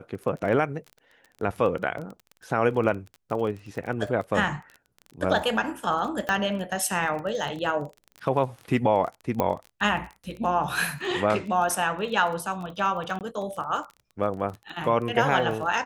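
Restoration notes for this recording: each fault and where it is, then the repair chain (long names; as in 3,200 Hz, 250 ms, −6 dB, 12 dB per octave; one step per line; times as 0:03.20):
surface crackle 23 per second −33 dBFS
0:06.29: click −13 dBFS
0:09.40: click −12 dBFS
0:13.19–0:13.21: drop-out 18 ms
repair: click removal
repair the gap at 0:13.19, 18 ms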